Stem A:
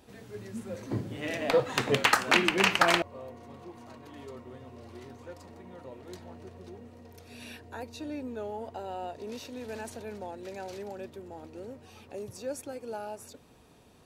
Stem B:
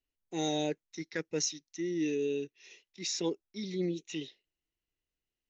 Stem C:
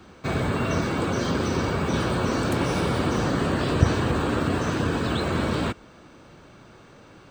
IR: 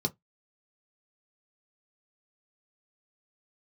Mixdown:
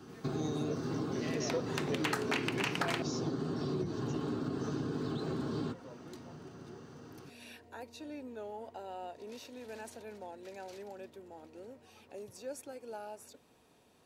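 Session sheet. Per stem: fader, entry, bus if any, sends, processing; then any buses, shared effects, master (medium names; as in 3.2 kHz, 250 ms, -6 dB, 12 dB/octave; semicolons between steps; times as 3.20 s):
-5.5 dB, 0.00 s, no bus, no send, none
-5.0 dB, 0.00 s, bus A, send -8 dB, none
-7.0 dB, 0.00 s, bus A, send -4 dB, compression, threshold -28 dBFS, peak gain reduction 16 dB
bus A: 0.0 dB, peak limiter -34 dBFS, peak gain reduction 12.5 dB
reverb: on, RT60 0.15 s, pre-delay 3 ms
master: bass shelf 130 Hz -11.5 dB; band-stop 1.2 kHz, Q 28; compression 2:1, threshold -34 dBFS, peak gain reduction 7 dB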